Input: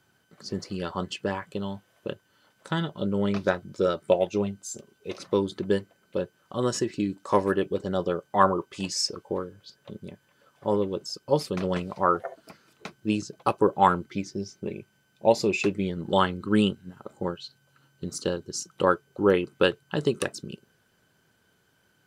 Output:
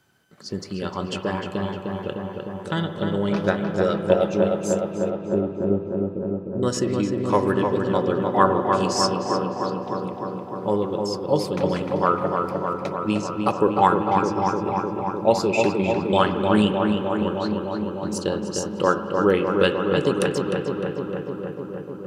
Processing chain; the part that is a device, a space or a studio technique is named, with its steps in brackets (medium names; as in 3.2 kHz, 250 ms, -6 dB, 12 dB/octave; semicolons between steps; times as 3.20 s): 5.09–6.63 s: inverse Chebyshev low-pass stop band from 790 Hz, stop band 40 dB; dub delay into a spring reverb (filtered feedback delay 304 ms, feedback 80%, low-pass 2.6 kHz, level -4 dB; spring tank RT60 3.4 s, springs 48/52 ms, chirp 60 ms, DRR 9 dB); trim +2 dB